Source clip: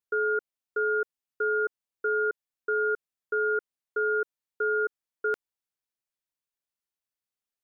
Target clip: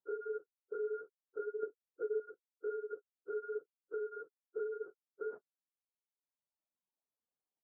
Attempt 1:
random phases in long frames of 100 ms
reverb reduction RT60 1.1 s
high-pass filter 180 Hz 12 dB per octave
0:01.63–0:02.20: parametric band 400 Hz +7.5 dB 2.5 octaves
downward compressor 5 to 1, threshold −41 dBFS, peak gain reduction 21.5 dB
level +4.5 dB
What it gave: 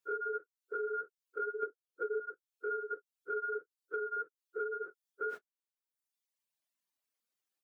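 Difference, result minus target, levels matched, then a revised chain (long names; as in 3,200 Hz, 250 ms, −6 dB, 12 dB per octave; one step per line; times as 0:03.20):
1,000 Hz band +9.0 dB
random phases in long frames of 100 ms
reverb reduction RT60 1.1 s
high-pass filter 180 Hz 12 dB per octave
0:01.63–0:02.20: parametric band 400 Hz +7.5 dB 2.5 octaves
downward compressor 5 to 1, threshold −41 dBFS, peak gain reduction 21.5 dB
low-pass filter 1,000 Hz 24 dB per octave
level +4.5 dB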